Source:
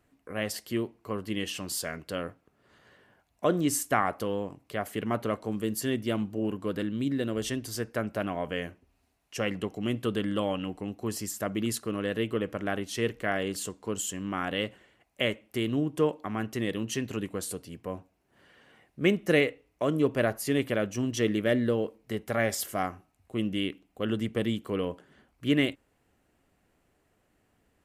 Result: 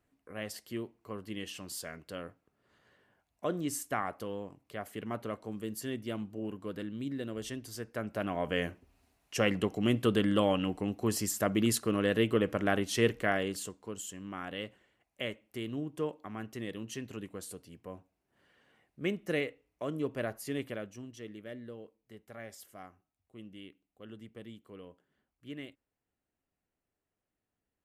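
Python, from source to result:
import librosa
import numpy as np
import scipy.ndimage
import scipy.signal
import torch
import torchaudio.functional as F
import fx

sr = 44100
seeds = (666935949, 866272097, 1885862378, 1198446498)

y = fx.gain(x, sr, db=fx.line((7.85, -8.0), (8.63, 2.0), (13.13, 2.0), (13.93, -9.0), (20.64, -9.0), (21.18, -19.0)))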